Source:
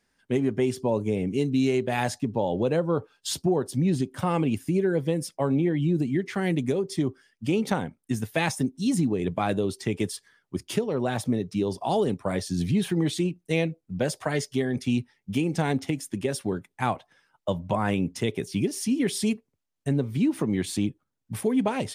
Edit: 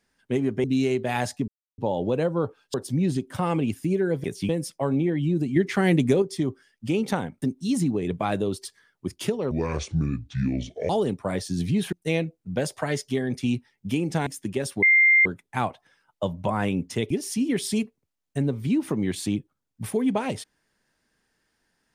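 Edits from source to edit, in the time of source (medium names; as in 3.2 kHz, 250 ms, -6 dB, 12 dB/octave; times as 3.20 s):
0.64–1.47 s: delete
2.31 s: insert silence 0.30 s
3.27–3.58 s: delete
6.15–6.81 s: gain +5.5 dB
8.01–8.59 s: delete
9.82–10.14 s: delete
11.00–11.90 s: speed 65%
12.93–13.36 s: delete
15.70–15.95 s: delete
16.51 s: add tone 2.1 kHz -13.5 dBFS 0.43 s
18.36–18.61 s: move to 5.08 s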